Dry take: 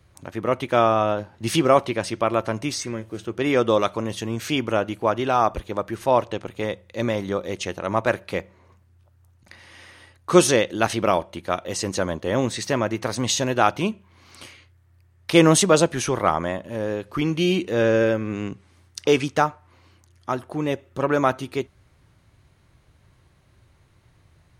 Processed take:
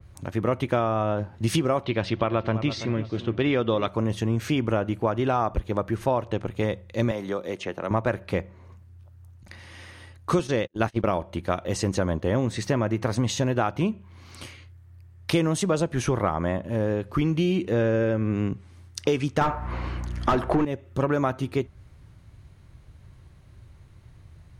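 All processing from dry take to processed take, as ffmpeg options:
ffmpeg -i in.wav -filter_complex "[0:a]asettb=1/sr,asplit=3[link_01][link_02][link_03];[link_01]atrim=end=1.834[link_04];[link_02]atrim=start=1.83:end=3.88,asetpts=PTS-STARTPTS,afade=type=in:duration=0.004:curve=qsin,afade=type=out:start_time=2.046:duration=0.004:curve=qsin,lowpass=frequency=3700:width_type=q:width=2.3,asplit=2[link_05][link_06];[link_06]adelay=332,lowpass=frequency=1600:poles=1,volume=-13.5dB,asplit=2[link_07][link_08];[link_08]adelay=332,lowpass=frequency=1600:poles=1,volume=0.32,asplit=2[link_09][link_10];[link_10]adelay=332,lowpass=frequency=1600:poles=1,volume=0.32[link_11];[link_05][link_07][link_09][link_11]amix=inputs=4:normalize=0,atrim=end_sample=90405[link_12];[link_03]atrim=start=3.876[link_13];[link_04][link_12]acrossfade=duration=0.004:curve1=hsin:curve2=qsin[link_14];[link_14][link_13]acrossfade=duration=0.004:curve1=qsin:curve2=hsin,asettb=1/sr,asplit=3[link_15][link_16][link_17];[link_15]atrim=end=7.114[link_18];[link_16]atrim=start=7.11:end=7.91,asetpts=PTS-STARTPTS,afade=type=in:duration=0.004:curve=qsin,afade=type=out:start_time=0.796:duration=0.004:curve=qsin,highpass=160,acrossover=split=370|3500|7000[link_19][link_20][link_21][link_22];[link_19]acompressor=threshold=-40dB:ratio=3[link_23];[link_20]acompressor=threshold=-29dB:ratio=3[link_24];[link_21]acompressor=threshold=-50dB:ratio=3[link_25];[link_22]acompressor=threshold=-55dB:ratio=3[link_26];[link_23][link_24][link_25][link_26]amix=inputs=4:normalize=0[link_27];[link_17]atrim=start=7.906[link_28];[link_18][link_27]acrossfade=duration=0.004:curve1=hsin:curve2=qsin[link_29];[link_29][link_28]acrossfade=duration=0.004:curve1=qsin:curve2=hsin,asettb=1/sr,asplit=3[link_30][link_31][link_32];[link_30]atrim=end=10.394[link_33];[link_31]atrim=start=10.39:end=11.07,asetpts=PTS-STARTPTS,afade=type=in:duration=0.004:curve=qsin,afade=type=out:start_time=0.676:duration=0.004:curve=qsin,acrossover=split=5300[link_34][link_35];[link_35]acompressor=threshold=-36dB:ratio=4:attack=1:release=60[link_36];[link_34][link_36]amix=inputs=2:normalize=0,agate=range=-42dB:threshold=-27dB:ratio=16:release=100:detection=peak[link_37];[link_32]atrim=start=11.066[link_38];[link_33][link_37]acrossfade=duration=0.004:curve1=hsin:curve2=qsin[link_39];[link_39][link_38]acrossfade=duration=0.004:curve1=qsin:curve2=hsin,asettb=1/sr,asplit=3[link_40][link_41][link_42];[link_40]atrim=end=19.414[link_43];[link_41]atrim=start=19.41:end=20.65,asetpts=PTS-STARTPTS,afade=type=in:duration=0.004:curve=qsin,afade=type=out:start_time=1.236:duration=0.004:curve=qsin,asplit=2[link_44][link_45];[link_45]highpass=frequency=720:poles=1,volume=32dB,asoftclip=type=tanh:threshold=-3.5dB[link_46];[link_44][link_46]amix=inputs=2:normalize=0,lowpass=frequency=1400:poles=1,volume=-6dB,aeval=exprs='val(0)+0.0112*(sin(2*PI*60*n/s)+sin(2*PI*2*60*n/s)/2+sin(2*PI*3*60*n/s)/3+sin(2*PI*4*60*n/s)/4+sin(2*PI*5*60*n/s)/5)':channel_layout=same[link_47];[link_42]atrim=start=20.646[link_48];[link_43][link_47]acrossfade=duration=0.004:curve1=hsin:curve2=qsin[link_49];[link_49][link_48]acrossfade=duration=0.004:curve1=qsin:curve2=hsin,lowshelf=frequency=180:gain=11,acompressor=threshold=-19dB:ratio=10,adynamicequalizer=threshold=0.00562:dfrequency=2700:dqfactor=0.7:tfrequency=2700:tqfactor=0.7:attack=5:release=100:ratio=0.375:range=3.5:mode=cutabove:tftype=highshelf" out.wav

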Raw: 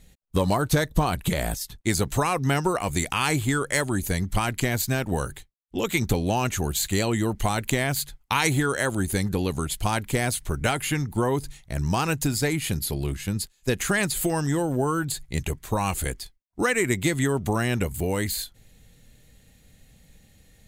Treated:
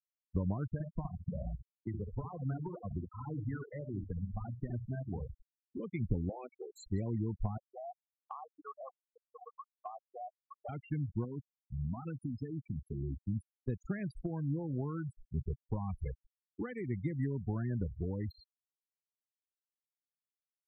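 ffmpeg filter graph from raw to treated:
ffmpeg -i in.wav -filter_complex "[0:a]asettb=1/sr,asplit=3[link_01][link_02][link_03];[link_01]atrim=end=0.724[link_04];[link_02]atrim=start=0.72:end=5.79,asetpts=PTS-STARTPTS,afade=type=in:duration=0.004:curve=qsin,afade=type=out:start_time=5.066:duration=0.004:curve=qsin,acrossover=split=84|530|1700[link_05][link_06][link_07][link_08];[link_05]acompressor=threshold=-36dB:ratio=3[link_09];[link_06]acompressor=threshold=-30dB:ratio=3[link_10];[link_07]acompressor=threshold=-33dB:ratio=3[link_11];[link_08]acompressor=threshold=-38dB:ratio=3[link_12];[link_09][link_10][link_11][link_12]amix=inputs=4:normalize=0,aecho=1:1:67|134|201|268:0.531|0.17|0.0544|0.0174,atrim=end_sample=223587[link_13];[link_03]atrim=start=5.786[link_14];[link_04][link_13]acrossfade=duration=0.004:curve1=hsin:curve2=qsin[link_15];[link_15][link_14]acrossfade=duration=0.004:curve1=qsin:curve2=hsin,asettb=1/sr,asplit=3[link_16][link_17][link_18];[link_16]atrim=end=6.294[link_19];[link_17]atrim=start=6.29:end=6.75,asetpts=PTS-STARTPTS,afade=type=in:duration=0.004:curve=qsin,afade=type=out:start_time=0.456:duration=0.004:curve=qsin,highpass=370,equalizer=frequency=500:width_type=q:width=4:gain=8,equalizer=frequency=770:width_type=q:width=4:gain=-4,equalizer=frequency=1600:width_type=q:width=4:gain=-8,equalizer=frequency=2300:width_type=q:width=4:gain=5,lowpass=frequency=2500:width=0.5412,lowpass=frequency=2500:width=1.3066,asplit=2[link_20][link_21];[link_21]adelay=21,volume=-11dB[link_22];[link_20][link_22]amix=inputs=2:normalize=0,atrim=end_sample=20286[link_23];[link_18]atrim=start=6.746[link_24];[link_19][link_23]acrossfade=duration=0.004:curve1=hsin:curve2=qsin[link_25];[link_25][link_24]acrossfade=duration=0.004:curve1=qsin:curve2=hsin,asettb=1/sr,asplit=3[link_26][link_27][link_28];[link_26]atrim=end=7.574[link_29];[link_27]atrim=start=7.57:end=10.69,asetpts=PTS-STARTPTS,afade=type=in:duration=0.004:curve=qsin,afade=type=out:start_time=3.116:duration=0.004:curve=qsin,highshelf=frequency=1600:width_type=q:width=3:gain=-11.5,acontrast=20,asplit=3[link_30][link_31][link_32];[link_30]bandpass=frequency=730:width_type=q:width=8,volume=0dB[link_33];[link_31]bandpass=frequency=1090:width_type=q:width=8,volume=-6dB[link_34];[link_32]bandpass=frequency=2440:width_type=q:width=8,volume=-9dB[link_35];[link_33][link_34][link_35]amix=inputs=3:normalize=0[link_36];[link_28]atrim=start=10.686[link_37];[link_29][link_36]acrossfade=duration=0.004:curve1=hsin:curve2=qsin[link_38];[link_38][link_37]acrossfade=duration=0.004:curve1=qsin:curve2=hsin,asettb=1/sr,asplit=3[link_39][link_40][link_41];[link_39]atrim=end=11.244[link_42];[link_40]atrim=start=11.24:end=13.25,asetpts=PTS-STARTPTS,afade=type=in:duration=0.004:curve=qsin,afade=type=out:start_time=2.006:duration=0.004:curve=qsin,highpass=49,equalizer=frequency=250:width=4.3:gain=5.5,acompressor=threshold=-24dB:ratio=6:attack=3.2:release=140:knee=1:detection=peak[link_43];[link_41]atrim=start=13.246[link_44];[link_42][link_43]acrossfade=duration=0.004:curve1=hsin:curve2=qsin[link_45];[link_45][link_44]acrossfade=duration=0.004:curve1=qsin:curve2=hsin,afftfilt=real='re*gte(hypot(re,im),0.141)':imag='im*gte(hypot(re,im),0.141)':win_size=1024:overlap=0.75,equalizer=frequency=9300:width_type=o:width=2.8:gain=-14,acrossover=split=250[link_46][link_47];[link_47]acompressor=threshold=-37dB:ratio=4[link_48];[link_46][link_48]amix=inputs=2:normalize=0,volume=-7.5dB" out.wav

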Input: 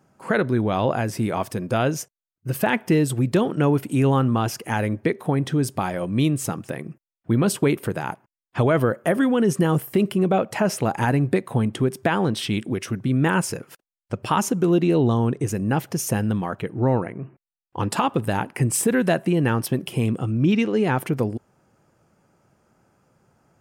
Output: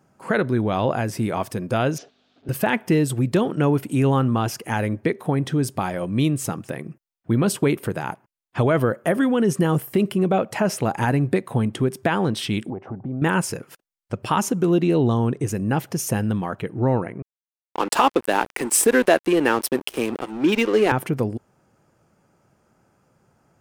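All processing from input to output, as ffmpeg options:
ffmpeg -i in.wav -filter_complex "[0:a]asettb=1/sr,asplit=3[link_01][link_02][link_03];[link_01]atrim=end=1.984[link_04];[link_02]atrim=start=1.98:end=2.49,asetpts=PTS-STARTPTS,afade=type=in:duration=0.004:curve=qsin,afade=type=out:start_time=0.506:duration=0.004:curve=qsin,aeval=exprs='val(0)+0.5*0.00422*sgn(val(0))':channel_layout=same,aeval=exprs='val(0)+0.001*(sin(2*PI*50*n/s)+sin(2*PI*2*50*n/s)/2+sin(2*PI*3*50*n/s)/3+sin(2*PI*4*50*n/s)/4+sin(2*PI*5*50*n/s)/5)':channel_layout=same,highpass=260,equalizer=frequency=270:width_type=q:width=4:gain=10,equalizer=frequency=420:width_type=q:width=4:gain=7,equalizer=frequency=700:width_type=q:width=4:gain=7,equalizer=frequency=1000:width_type=q:width=4:gain=-6,equalizer=frequency=2000:width_type=q:width=4:gain=-7,equalizer=frequency=3600:width_type=q:width=4:gain=4,lowpass=frequency=4200:width=0.5412,lowpass=frequency=4200:width=1.3066[link_05];[link_03]atrim=start=2.486[link_06];[link_04][link_05]acrossfade=duration=0.004:curve1=hsin:curve2=qsin[link_07];[link_07][link_06]acrossfade=duration=0.004:curve1=qsin:curve2=hsin,asettb=1/sr,asplit=3[link_08][link_09][link_10];[link_08]atrim=end=12.704[link_11];[link_09]atrim=start=12.7:end=13.22,asetpts=PTS-STARTPTS,afade=type=in:duration=0.004:curve=qsin,afade=type=out:start_time=0.516:duration=0.004:curve=qsin,lowpass=frequency=800:width_type=q:width=7,acompressor=threshold=-32dB:ratio=2:attack=3.2:release=140:knee=1:detection=peak[link_12];[link_10]atrim=start=13.216[link_13];[link_11][link_12]acrossfade=duration=0.004:curve1=hsin:curve2=qsin[link_14];[link_14][link_13]acrossfade=duration=0.004:curve1=qsin:curve2=hsin,asettb=1/sr,asplit=3[link_15][link_16][link_17];[link_15]atrim=end=17.224[link_18];[link_16]atrim=start=17.22:end=20.92,asetpts=PTS-STARTPTS,afade=type=in:duration=0.004:curve=qsin,afade=type=out:start_time=3.696:duration=0.004:curve=qsin,highpass=frequency=280:width=0.5412,highpass=frequency=280:width=1.3066,acontrast=82,aeval=exprs='sgn(val(0))*max(abs(val(0))-0.0335,0)':channel_layout=same[link_19];[link_17]atrim=start=20.916[link_20];[link_18][link_19]acrossfade=duration=0.004:curve1=hsin:curve2=qsin[link_21];[link_21][link_20]acrossfade=duration=0.004:curve1=qsin:curve2=hsin" out.wav

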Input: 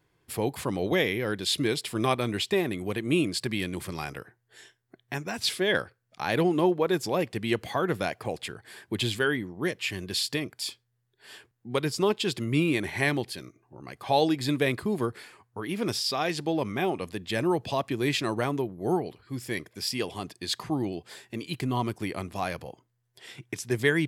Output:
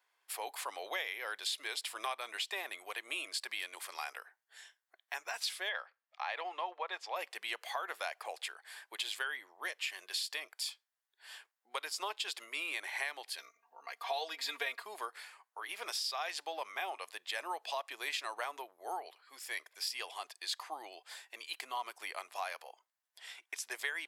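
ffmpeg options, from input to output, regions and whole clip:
ffmpeg -i in.wav -filter_complex "[0:a]asettb=1/sr,asplit=3[link_01][link_02][link_03];[link_01]atrim=end=5.694[link_04];[link_02]atrim=start=5.69:end=7.16,asetpts=PTS-STARTPTS,afade=type=in:duration=0.004:curve=qsin,afade=type=out:start_time=1.466:duration=0.004:curve=qsin,highpass=480,lowpass=3400,bandreject=frequency=1500:width=11[link_05];[link_03]atrim=start=7.156[link_06];[link_04][link_05]acrossfade=duration=0.004:curve1=hsin:curve2=qsin[link_07];[link_07][link_06]acrossfade=duration=0.004:curve1=qsin:curve2=hsin,asettb=1/sr,asplit=3[link_08][link_09][link_10];[link_08]atrim=end=13.384[link_11];[link_09]atrim=start=13.38:end=14.83,asetpts=PTS-STARTPTS,afade=type=in:duration=0.004:curve=qsin,afade=type=out:start_time=1.446:duration=0.004:curve=qsin,equalizer=frequency=9100:width=2.6:gain=-8.5,aecho=1:1:4.3:0.97,atrim=end_sample=63945,aeval=exprs='val(0)+0.00355*(sin(2*PI*50*n/s)+sin(2*PI*2*50*n/s)/2+sin(2*PI*3*50*n/s)/3+sin(2*PI*4*50*n/s)/4+sin(2*PI*5*50*n/s)/5)':channel_layout=same[link_12];[link_10]atrim=start=14.826[link_13];[link_11][link_12]acrossfade=duration=0.004:curve1=hsin:curve2=qsin[link_14];[link_14][link_13]acrossfade=duration=0.004:curve1=qsin:curve2=hsin,highpass=frequency=700:width=0.5412,highpass=frequency=700:width=1.3066,acompressor=threshold=-31dB:ratio=5,volume=-3dB" out.wav

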